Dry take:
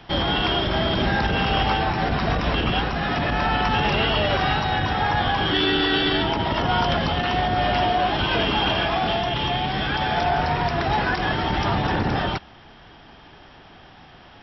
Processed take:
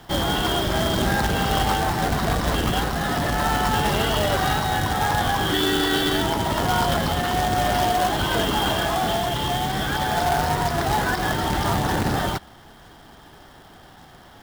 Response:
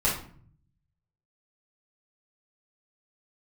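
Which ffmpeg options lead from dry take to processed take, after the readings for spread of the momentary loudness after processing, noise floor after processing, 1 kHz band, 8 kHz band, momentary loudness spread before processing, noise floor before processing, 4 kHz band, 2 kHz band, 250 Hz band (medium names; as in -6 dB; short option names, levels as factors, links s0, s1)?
3 LU, -47 dBFS, 0.0 dB, no reading, 3 LU, -47 dBFS, -1.5 dB, -1.5 dB, 0.0 dB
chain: -af "equalizer=f=2500:w=4.5:g=-13,acrusher=bits=2:mode=log:mix=0:aa=0.000001"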